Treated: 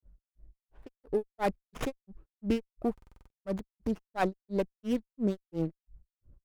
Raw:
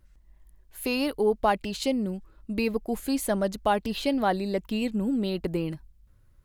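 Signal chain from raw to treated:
adaptive Wiener filter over 15 samples
rotating-speaker cabinet horn 1 Hz, later 6.7 Hz, at 0:02.13
low-pass that shuts in the quiet parts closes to 780 Hz, open at −28 dBFS
high-shelf EQ 9,600 Hz +12 dB
in parallel at −0.5 dB: brickwall limiter −28.5 dBFS, peak gain reduction 16 dB
on the sum: granular cloud 203 ms, grains 2.9 per second, spray 100 ms, pitch spread up and down by 0 semitones
buffer that repeats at 0:02.93, samples 2,048, times 7
windowed peak hold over 9 samples

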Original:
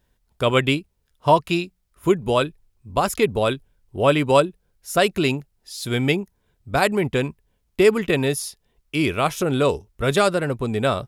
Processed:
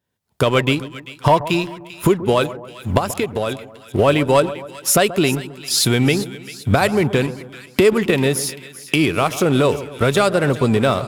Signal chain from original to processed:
camcorder AGC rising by 33 dB per second
high-pass filter 88 Hz 24 dB per octave
leveller curve on the samples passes 2
0:02.98–0:03.99: downward compressor, threshold −12 dBFS, peak gain reduction 7 dB
on a send: echo with a time of its own for lows and highs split 1,400 Hz, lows 132 ms, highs 393 ms, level −14.5 dB
on the sum: level −5.5 dB

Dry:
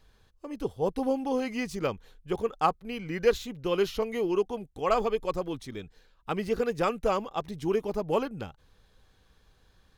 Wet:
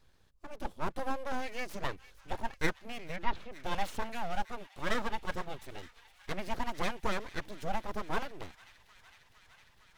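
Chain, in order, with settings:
0:04.09–0:05.11: high-pass filter 100 Hz 24 dB per octave
full-wave rectification
0:03.16–0:03.56: high-frequency loss of the air 260 metres
delay with a high-pass on its return 458 ms, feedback 82%, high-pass 1,900 Hz, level −17 dB
level −3.5 dB

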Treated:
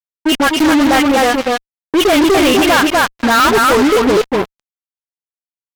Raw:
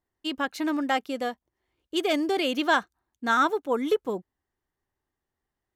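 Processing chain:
flat-topped bell 6,400 Hz −14 dB
in parallel at −2.5 dB: brickwall limiter −19 dBFS, peak gain reduction 8 dB
on the sum: all-pass dispersion highs, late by 45 ms, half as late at 1,000 Hz
on a send: repeating echo 245 ms, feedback 21%, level −4.5 dB
on the sum: fuzz pedal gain 30 dB, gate −31 dBFS
level +5 dB

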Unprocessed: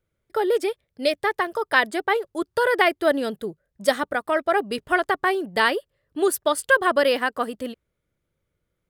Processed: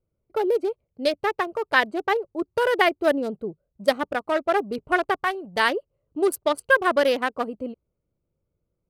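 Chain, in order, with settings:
adaptive Wiener filter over 25 samples
0:05.14–0:05.68: parametric band 310 Hz −13.5 dB → −4 dB 1.2 octaves

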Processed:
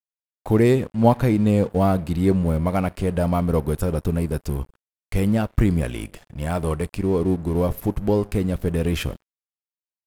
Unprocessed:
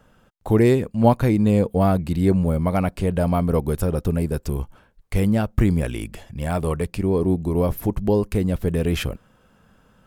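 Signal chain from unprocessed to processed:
coupled-rooms reverb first 0.59 s, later 2.1 s, DRR 18 dB
dead-zone distortion −41.5 dBFS

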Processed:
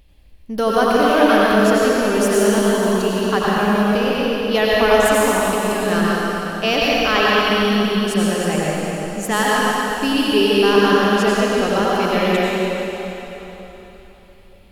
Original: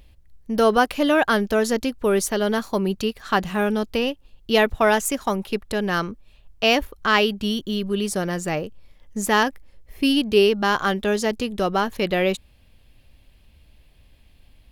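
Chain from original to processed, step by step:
dense smooth reverb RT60 3.7 s, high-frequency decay 0.9×, pre-delay 75 ms, DRR −6.5 dB
level −2 dB

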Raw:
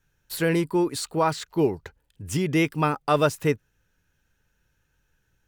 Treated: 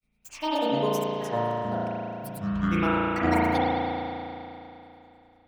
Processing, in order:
granular cloud, grains 10 per second, pitch spread up and down by 12 semitones
convolution reverb RT60 3.0 s, pre-delay 35 ms, DRR −9 dB
level −6.5 dB

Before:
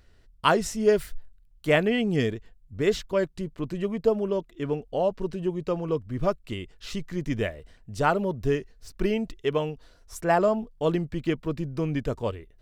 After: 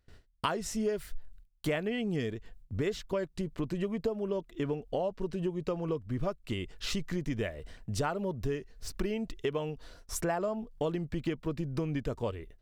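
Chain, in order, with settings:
noise gate with hold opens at −46 dBFS
downward compressor 6 to 1, threshold −35 dBFS, peak gain reduction 18.5 dB
level +5 dB

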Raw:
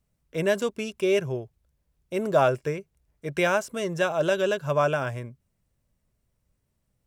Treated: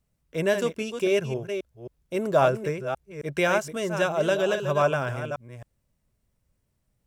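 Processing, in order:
delay that plays each chunk backwards 268 ms, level −8 dB

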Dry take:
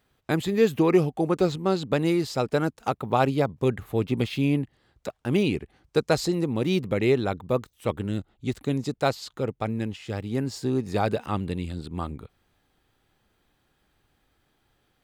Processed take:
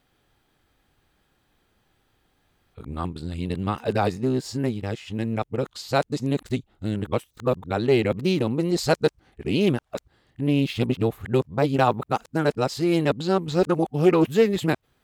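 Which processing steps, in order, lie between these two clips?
played backwards from end to start
highs frequency-modulated by the lows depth 0.12 ms
level +2 dB

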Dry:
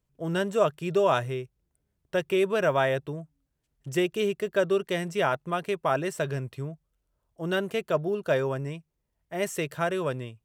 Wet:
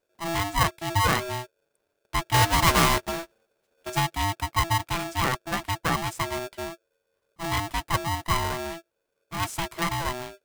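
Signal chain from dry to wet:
0:02.34–0:03.90: each half-wave held at its own peak
ring modulator with a square carrier 500 Hz

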